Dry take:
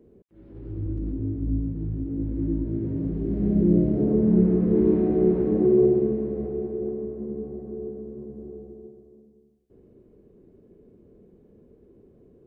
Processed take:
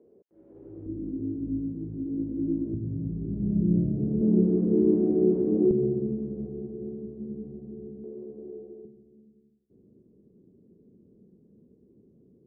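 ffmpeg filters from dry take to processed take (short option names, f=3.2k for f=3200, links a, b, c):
-af "asetnsamples=n=441:p=0,asendcmd='0.86 bandpass f 290;2.74 bandpass f 130;4.21 bandpass f 290;5.71 bandpass f 160;8.04 bandpass f 410;8.85 bandpass f 190',bandpass=f=540:t=q:w=1.3:csg=0"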